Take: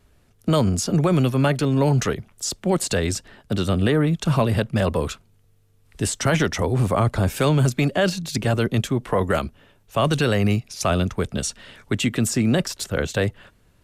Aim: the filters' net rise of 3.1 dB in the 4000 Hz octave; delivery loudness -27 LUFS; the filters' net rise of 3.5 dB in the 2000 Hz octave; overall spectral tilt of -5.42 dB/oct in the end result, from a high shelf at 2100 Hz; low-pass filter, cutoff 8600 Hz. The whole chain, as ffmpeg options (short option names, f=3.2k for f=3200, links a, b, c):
-af "lowpass=8.6k,equalizer=f=2k:t=o:g=5,highshelf=f=2.1k:g=-3,equalizer=f=4k:t=o:g=5.5,volume=-5.5dB"